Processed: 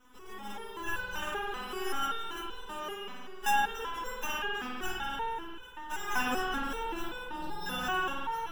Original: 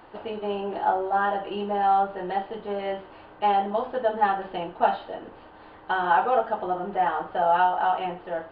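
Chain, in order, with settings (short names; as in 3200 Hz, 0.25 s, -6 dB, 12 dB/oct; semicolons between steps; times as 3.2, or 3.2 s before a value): minimum comb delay 0.75 ms; 7.01–7.66 elliptic low-pass 1000 Hz; sample-and-hold 10×; swung echo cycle 1.064 s, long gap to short 3:1, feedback 51%, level -18.5 dB; spring tank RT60 2.7 s, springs 48 ms, chirp 25 ms, DRR -6.5 dB; stepped resonator 5.2 Hz 250–500 Hz; gain +2.5 dB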